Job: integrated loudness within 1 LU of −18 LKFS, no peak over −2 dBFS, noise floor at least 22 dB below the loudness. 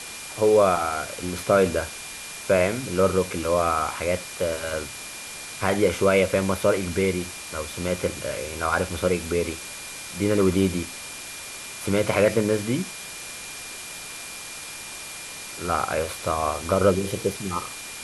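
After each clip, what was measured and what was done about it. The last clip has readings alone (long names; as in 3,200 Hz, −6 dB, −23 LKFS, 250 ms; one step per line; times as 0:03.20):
interfering tone 2,400 Hz; level of the tone −42 dBFS; background noise floor −38 dBFS; target noise floor −47 dBFS; integrated loudness −25.0 LKFS; sample peak −6.5 dBFS; target loudness −18.0 LKFS
→ notch filter 2,400 Hz, Q 30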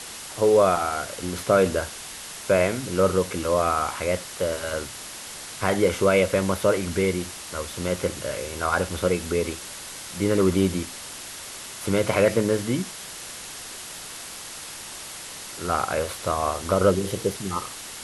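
interfering tone none found; background noise floor −38 dBFS; target noise floor −47 dBFS
→ broadband denoise 9 dB, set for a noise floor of −38 dBFS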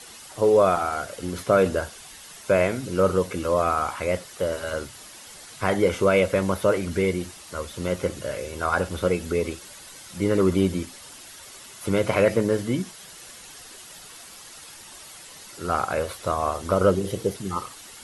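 background noise floor −44 dBFS; target noise floor −47 dBFS
→ broadband denoise 6 dB, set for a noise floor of −44 dBFS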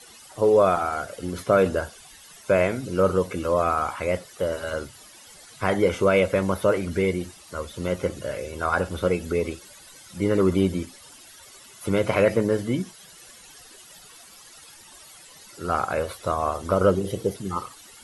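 background noise floor −48 dBFS; integrated loudness −24.5 LKFS; sample peak −7.0 dBFS; target loudness −18.0 LKFS
→ level +6.5 dB
brickwall limiter −2 dBFS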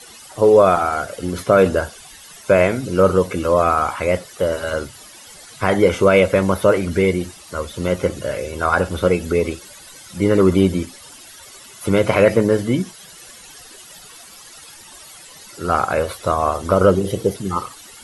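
integrated loudness −18.0 LKFS; sample peak −2.0 dBFS; background noise floor −42 dBFS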